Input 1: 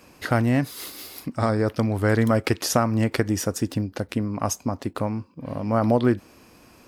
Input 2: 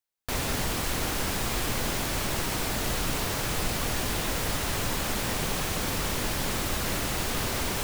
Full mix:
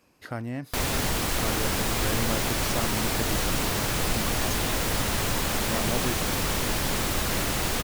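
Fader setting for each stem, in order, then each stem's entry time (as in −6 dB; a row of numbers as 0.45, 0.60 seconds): −12.5, +2.5 decibels; 0.00, 0.45 seconds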